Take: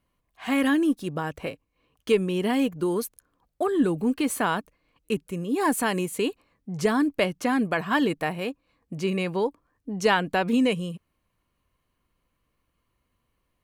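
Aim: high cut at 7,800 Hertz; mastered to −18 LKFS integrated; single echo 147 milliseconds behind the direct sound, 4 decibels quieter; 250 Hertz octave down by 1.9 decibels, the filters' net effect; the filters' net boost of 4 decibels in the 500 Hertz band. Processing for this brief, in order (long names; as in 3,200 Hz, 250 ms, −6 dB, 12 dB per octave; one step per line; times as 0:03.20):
low-pass filter 7,800 Hz
parametric band 250 Hz −4.5 dB
parametric band 500 Hz +6.5 dB
single-tap delay 147 ms −4 dB
level +5.5 dB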